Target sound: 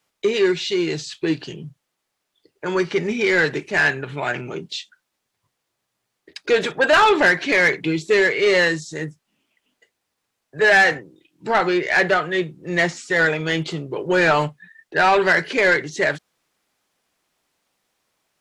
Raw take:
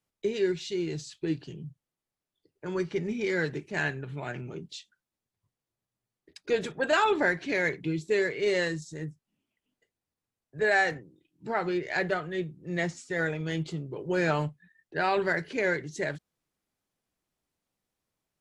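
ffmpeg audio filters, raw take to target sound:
-filter_complex "[0:a]acrossover=split=4500[a][b];[b]acompressor=threshold=-50dB:ratio=4:attack=1:release=60[c];[a][c]amix=inputs=2:normalize=0,asplit=2[d][e];[e]highpass=f=720:p=1,volume=15dB,asoftclip=type=tanh:threshold=-13dB[f];[d][f]amix=inputs=2:normalize=0,lowpass=f=6.6k:p=1,volume=-6dB,volume=6.5dB"

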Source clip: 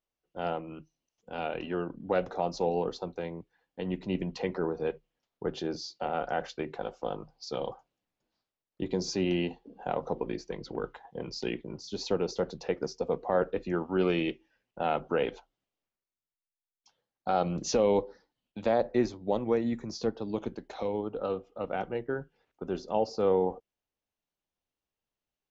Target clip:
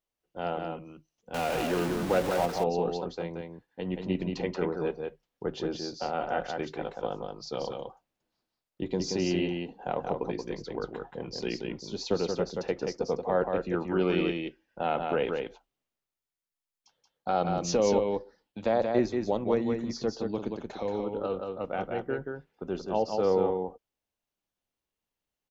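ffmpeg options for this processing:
-filter_complex "[0:a]asettb=1/sr,asplit=3[a][b][c];[a]atrim=end=1.344[d];[b]atrim=start=1.34:end=2.46,asetpts=PTS-STARTPTS,afade=t=in:d=0.004:c=qsin,afade=t=out:st=1.116:d=0.004:c=qsin,aeval=exprs='val(0)+0.5*0.0316*sgn(val(0))':c=same[e];[c]atrim=start=2.456[f];[d][e]acrossfade=d=0.004:c1=hsin:c2=qsin[g];[g][f]acrossfade=d=0.004:c1=qsin:c2=hsin,asplit=2[h][i];[i]aecho=0:1:179:0.596[j];[h][j]amix=inputs=2:normalize=0"

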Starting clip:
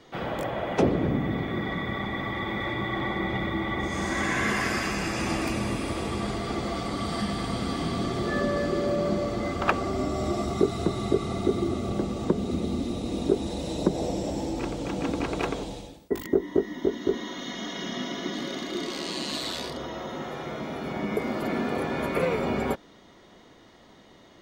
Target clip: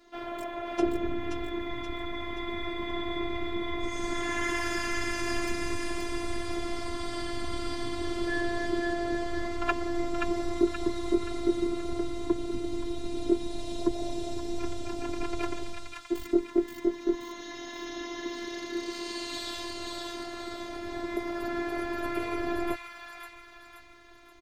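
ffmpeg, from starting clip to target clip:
-filter_complex "[0:a]aecho=1:1:5.2:0.59,acrossover=split=120|1000[a][b][c];[a]dynaudnorm=f=610:g=3:m=13.5dB[d];[c]aecho=1:1:527|1054|1581|2108|2635|3162:0.708|0.326|0.15|0.0689|0.0317|0.0146[e];[d][b][e]amix=inputs=3:normalize=0,afftfilt=real='hypot(re,im)*cos(PI*b)':imag='0':win_size=512:overlap=0.75,volume=-3dB"

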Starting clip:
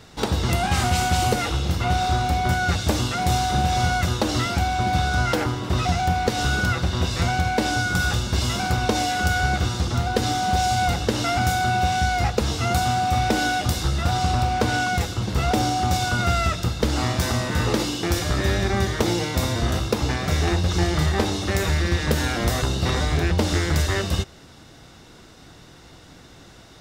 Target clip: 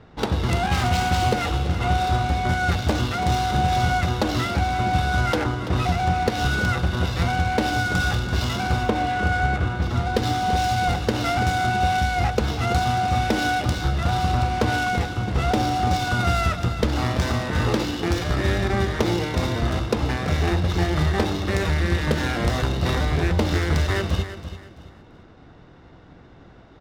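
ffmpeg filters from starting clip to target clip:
-filter_complex "[0:a]asettb=1/sr,asplit=3[a][b][c];[a]atrim=end=8.834[d];[b]atrim=start=8.83:end=9.82,asetpts=PTS-STARTPTS,afade=t=in:d=0.004:c=qsin,afade=t=out:st=0.986:d=0.004:c=qsin,lowpass=2.8k[e];[c]atrim=start=9.816[f];[d][e]acrossfade=d=0.004:c1=hsin:c2=qsin[g];[g][f]acrossfade=d=0.004:c1=qsin:c2=hsin,adynamicsmooth=sensitivity=4:basefreq=1.8k,aecho=1:1:335|670|1005:0.251|0.0779|0.0241"

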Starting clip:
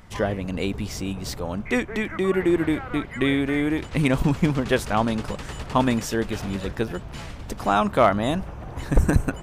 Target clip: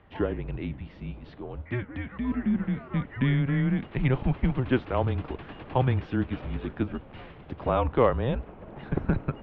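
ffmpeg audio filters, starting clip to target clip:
-filter_complex "[0:a]equalizer=f=320:w=0.49:g=7,highpass=f=170:t=q:w=0.5412,highpass=f=170:t=q:w=1.307,lowpass=f=3.5k:t=q:w=0.5176,lowpass=f=3.5k:t=q:w=0.7071,lowpass=f=3.5k:t=q:w=1.932,afreqshift=-130,asplit=3[a][b][c];[a]afade=t=out:st=0.56:d=0.02[d];[b]flanger=delay=9.2:depth=9.5:regen=82:speed=1.7:shape=triangular,afade=t=in:st=0.56:d=0.02,afade=t=out:st=2.9:d=0.02[e];[c]afade=t=in:st=2.9:d=0.02[f];[d][e][f]amix=inputs=3:normalize=0,volume=-8dB"

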